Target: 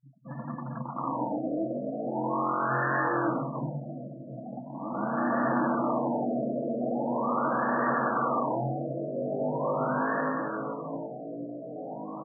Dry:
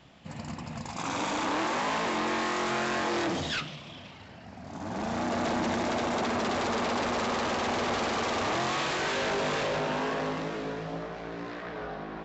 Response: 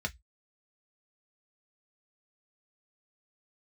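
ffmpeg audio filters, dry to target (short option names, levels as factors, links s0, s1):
-filter_complex "[0:a]asplit=3[s0][s1][s2];[s0]afade=t=out:st=3.54:d=0.02[s3];[s1]acontrast=85,afade=t=in:st=3.54:d=0.02,afade=t=out:st=4.59:d=0.02[s4];[s2]afade=t=in:st=4.59:d=0.02[s5];[s3][s4][s5]amix=inputs=3:normalize=0,asplit=2[s6][s7];[1:a]atrim=start_sample=2205,asetrate=79380,aresample=44100,lowpass=6200[s8];[s7][s8]afir=irnorm=-1:irlink=0,volume=0.841[s9];[s6][s9]amix=inputs=2:normalize=0,afftfilt=real='re*gte(hypot(re,im),0.0141)':imag='im*gte(hypot(re,im),0.0141)':win_size=1024:overlap=0.75,highshelf=f=2100:g=11,asplit=2[s10][s11];[s11]adelay=957,lowpass=f=1500:p=1,volume=0.0794,asplit=2[s12][s13];[s13]adelay=957,lowpass=f=1500:p=1,volume=0.55,asplit=2[s14][s15];[s15]adelay=957,lowpass=f=1500:p=1,volume=0.55,asplit=2[s16][s17];[s17]adelay=957,lowpass=f=1500:p=1,volume=0.55[s18];[s10][s12][s14][s16][s18]amix=inputs=5:normalize=0,afftfilt=real='re*between(b*sr/4096,120,2800)':imag='im*between(b*sr/4096,120,2800)':win_size=4096:overlap=0.75,flanger=delay=6.5:depth=2.8:regen=-71:speed=0.33:shape=triangular,afftfilt=real='re*lt(b*sr/1024,690*pow(1900/690,0.5+0.5*sin(2*PI*0.41*pts/sr)))':imag='im*lt(b*sr/1024,690*pow(1900/690,0.5+0.5*sin(2*PI*0.41*pts/sr)))':win_size=1024:overlap=0.75,volume=1.41"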